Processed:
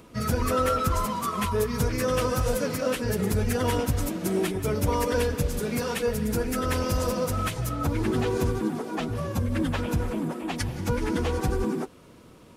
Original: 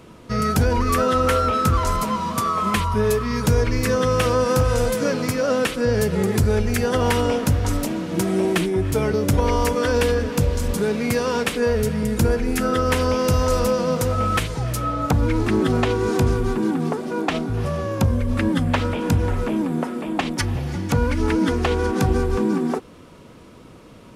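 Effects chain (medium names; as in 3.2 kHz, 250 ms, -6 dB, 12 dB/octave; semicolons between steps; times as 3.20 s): plain phase-vocoder stretch 0.52×; treble shelf 10 kHz +9.5 dB; trim -3 dB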